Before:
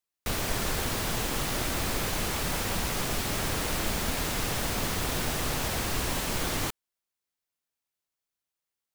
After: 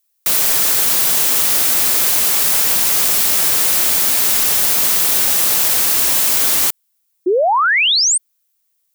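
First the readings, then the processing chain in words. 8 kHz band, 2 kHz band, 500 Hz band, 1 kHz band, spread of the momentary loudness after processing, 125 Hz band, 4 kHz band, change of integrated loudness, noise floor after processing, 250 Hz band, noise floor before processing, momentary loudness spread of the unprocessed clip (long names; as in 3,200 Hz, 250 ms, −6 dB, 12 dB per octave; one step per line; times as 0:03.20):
+19.0 dB, +13.5 dB, +12.0 dB, +12.5 dB, 3 LU, −5.5 dB, +15.5 dB, +18.0 dB, −66 dBFS, +2.5 dB, below −85 dBFS, 0 LU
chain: RIAA equalisation recording
sound drawn into the spectrogram rise, 0:07.26–0:08.18, 340–9,100 Hz −20 dBFS
level +6.5 dB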